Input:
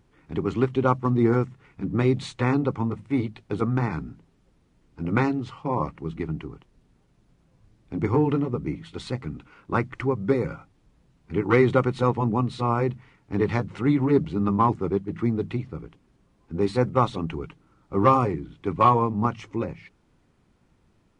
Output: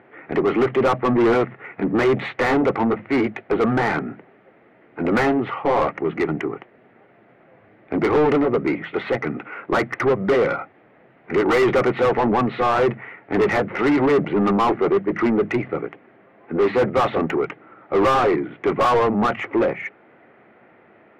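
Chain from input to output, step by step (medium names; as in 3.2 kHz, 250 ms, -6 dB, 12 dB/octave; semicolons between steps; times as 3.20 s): cabinet simulation 170–2500 Hz, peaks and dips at 170 Hz -7 dB, 270 Hz -5 dB, 670 Hz +4 dB, 1 kHz -8 dB, 2 kHz +6 dB; overdrive pedal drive 33 dB, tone 1.1 kHz, clips at -5.5 dBFS; trim -2.5 dB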